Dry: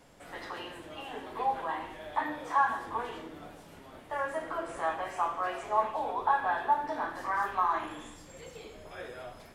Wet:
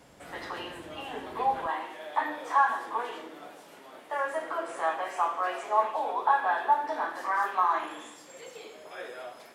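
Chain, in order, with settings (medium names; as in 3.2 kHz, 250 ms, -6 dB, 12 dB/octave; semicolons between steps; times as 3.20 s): high-pass 44 Hz 12 dB/octave, from 1.66 s 350 Hz; trim +3 dB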